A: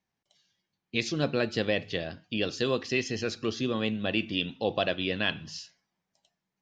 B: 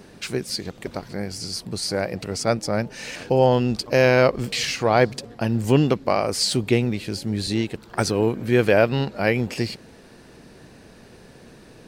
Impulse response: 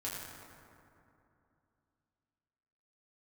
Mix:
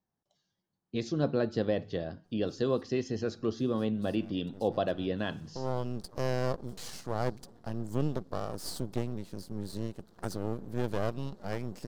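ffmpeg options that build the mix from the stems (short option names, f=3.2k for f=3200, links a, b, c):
-filter_complex "[0:a]highshelf=f=2.2k:g=-10,volume=0dB,asplit=2[a][b];[1:a]highpass=40,equalizer=f=180:t=o:w=0.37:g=9.5,aeval=exprs='max(val(0),0)':c=same,adelay=2250,volume=-12dB,afade=t=in:st=3.61:d=0.3:silence=0.375837[c];[b]apad=whole_len=622845[d];[c][d]sidechaincompress=threshold=-40dB:ratio=8:attack=6.8:release=415[e];[a][e]amix=inputs=2:normalize=0,equalizer=f=2.4k:t=o:w=0.81:g=-12"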